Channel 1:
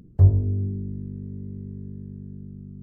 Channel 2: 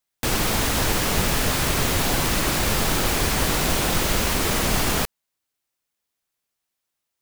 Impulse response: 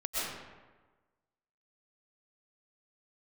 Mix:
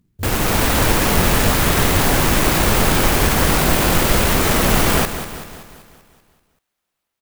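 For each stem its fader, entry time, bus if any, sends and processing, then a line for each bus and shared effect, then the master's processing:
-14.0 dB, 0.00 s, no send, no echo send, peaking EQ 850 Hz -11.5 dB 0.93 oct
+3.0 dB, 0.00 s, no send, echo send -11 dB, steep low-pass 8.5 kHz 48 dB/octave; level rider gain up to 4 dB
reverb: none
echo: feedback delay 192 ms, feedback 54%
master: sampling jitter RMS 0.054 ms

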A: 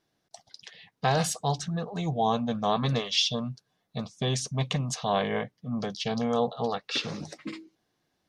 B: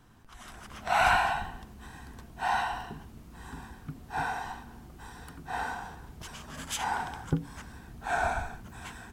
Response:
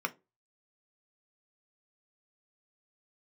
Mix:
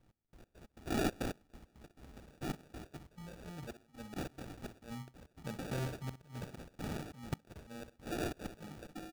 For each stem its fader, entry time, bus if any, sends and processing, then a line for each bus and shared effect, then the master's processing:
4.04 s -18 dB -> 4.83 s -10.5 dB -> 6.40 s -10.5 dB -> 6.80 s -19.5 dB -> 7.98 s -19.5 dB -> 8.52 s -12 dB, 1.50 s, no send, echo send -12 dB, upward compressor, threshold -32 dBFS; inverted gate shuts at -18 dBFS, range -26 dB
-9.0 dB, 0.00 s, no send, no echo send, trance gate "x..x.x.xxx." 137 bpm -24 dB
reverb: none
echo: feedback delay 62 ms, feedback 19%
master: sample-and-hold 42×

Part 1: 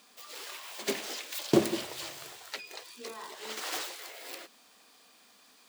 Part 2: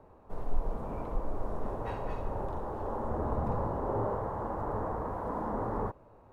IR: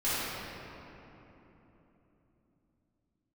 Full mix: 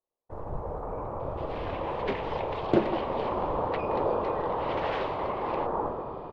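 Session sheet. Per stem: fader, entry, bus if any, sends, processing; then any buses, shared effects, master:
-1.5 dB, 1.20 s, no send, low-pass 2.9 kHz 24 dB/octave; gain riding within 4 dB 2 s
-10.5 dB, 0.00 s, send -12 dB, gate -48 dBFS, range -39 dB; ten-band graphic EQ 125 Hz +4 dB, 500 Hz +12 dB, 1 kHz +10 dB, 2 kHz +4 dB; whisper effect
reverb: on, RT60 3.5 s, pre-delay 3 ms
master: loudspeaker Doppler distortion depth 0.39 ms

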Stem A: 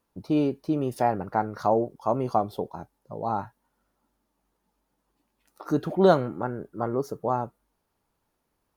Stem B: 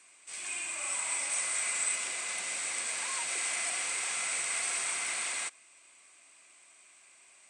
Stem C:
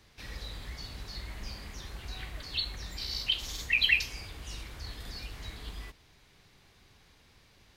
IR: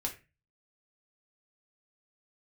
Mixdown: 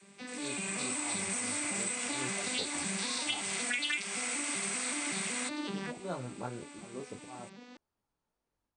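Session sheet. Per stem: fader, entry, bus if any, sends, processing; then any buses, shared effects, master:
-14.0 dB, 0.00 s, no bus, no send, slow attack 339 ms; detune thickener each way 12 cents
-5.0 dB, 0.00 s, bus A, no send, none
+1.0 dB, 0.00 s, bus A, no send, vocoder on a broken chord major triad, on G3, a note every 189 ms; vibrato 1.3 Hz 25 cents
bus A: 0.0 dB, saturation -18.5 dBFS, distortion -13 dB; compression 4:1, threshold -40 dBFS, peak gain reduction 14 dB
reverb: none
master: steep low-pass 10 kHz 96 dB/octave; level rider gain up to 7.5 dB

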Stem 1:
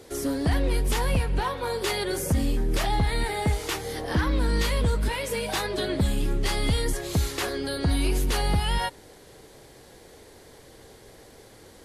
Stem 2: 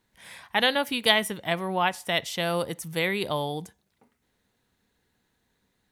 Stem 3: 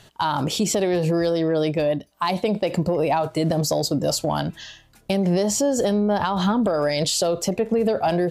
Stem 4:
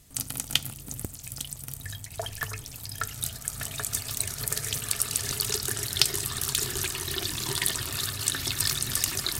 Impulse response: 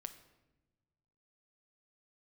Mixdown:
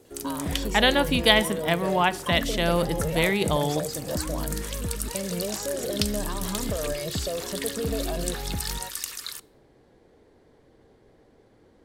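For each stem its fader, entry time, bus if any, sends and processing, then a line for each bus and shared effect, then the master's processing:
-10.0 dB, 0.00 s, send -9 dB, self-modulated delay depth 0.13 ms; low-pass 1.4 kHz 6 dB/octave
-1.0 dB, 0.20 s, send -3.5 dB, none
-14.0 dB, 0.05 s, no send, comb 1.8 ms
-8.0 dB, 0.00 s, send -7 dB, steep high-pass 920 Hz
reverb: on, pre-delay 7 ms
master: peaking EQ 250 Hz +4.5 dB 1.2 oct

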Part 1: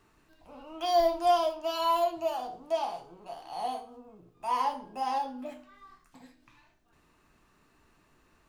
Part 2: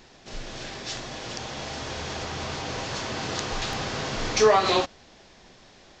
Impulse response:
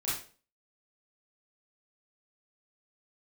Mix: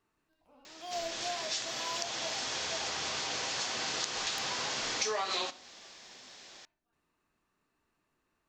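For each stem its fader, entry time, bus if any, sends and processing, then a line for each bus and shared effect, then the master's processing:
-13.0 dB, 0.00 s, no send, none
-2.5 dB, 0.65 s, send -23 dB, tilt EQ +3 dB/octave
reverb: on, RT60 0.40 s, pre-delay 28 ms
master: bass shelf 100 Hz -7.5 dB; compression 4:1, threshold -32 dBFS, peak gain reduction 12.5 dB

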